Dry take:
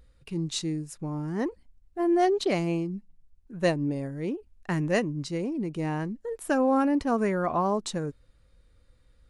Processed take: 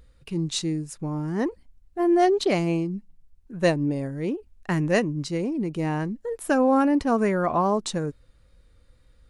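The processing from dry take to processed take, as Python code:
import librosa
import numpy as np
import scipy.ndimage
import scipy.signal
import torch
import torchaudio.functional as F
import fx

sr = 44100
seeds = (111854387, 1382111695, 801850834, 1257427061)

y = fx.wow_flutter(x, sr, seeds[0], rate_hz=2.1, depth_cents=16.0)
y = F.gain(torch.from_numpy(y), 3.5).numpy()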